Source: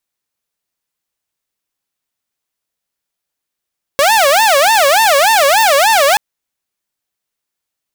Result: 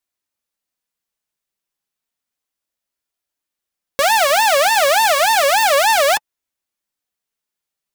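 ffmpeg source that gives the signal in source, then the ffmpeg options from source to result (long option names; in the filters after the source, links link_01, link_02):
-f lavfi -i "aevalsrc='0.562*(2*mod((727.5*t-178.5/(2*PI*3.4)*sin(2*PI*3.4*t)),1)-1)':duration=2.18:sample_rate=44100"
-af "flanger=delay=2.8:depth=2.4:regen=-50:speed=0.32:shape=triangular"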